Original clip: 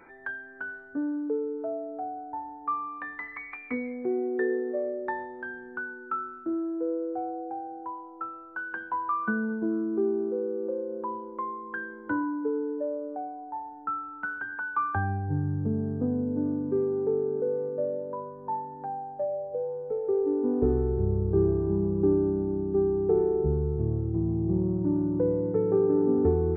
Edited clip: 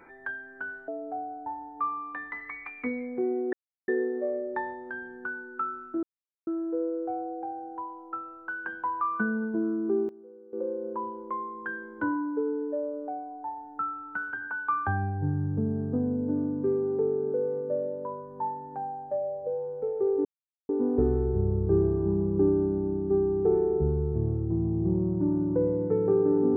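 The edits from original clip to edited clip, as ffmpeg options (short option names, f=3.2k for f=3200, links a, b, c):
-filter_complex "[0:a]asplit=7[a][b][c][d][e][f][g];[a]atrim=end=0.882[h];[b]atrim=start=1.748:end=4.4,asetpts=PTS-STARTPTS,afade=t=out:st=2.648:d=0.004:c=hsin,apad=pad_dur=0.35[i];[c]atrim=start=4.4:end=6.55,asetpts=PTS-STARTPTS,afade=t=in:d=0.004:c=hsin,afade=t=out:st=2.146:d=0.004:c=hsin,apad=pad_dur=0.44[j];[d]atrim=start=6.55:end=10.17,asetpts=PTS-STARTPTS,afade=t=in:d=0.004:c=hsin,afade=t=out:st=3.44:d=0.18:c=log:silence=0.105925[k];[e]atrim=start=10.17:end=10.61,asetpts=PTS-STARTPTS,volume=-19.5dB[l];[f]atrim=start=10.61:end=20.33,asetpts=PTS-STARTPTS,afade=t=in:d=0.18:c=log:silence=0.105925,afade=t=out:st=9.716:d=0.004:c=hsin,apad=pad_dur=0.44[m];[g]atrim=start=20.33,asetpts=PTS-STARTPTS,afade=t=in:d=0.004:c=hsin[n];[i][j][k][l][m][n]concat=n=6:v=0:a=1[o];[h][o]acrossfade=d=0.004:c1=hsin:c2=hsin"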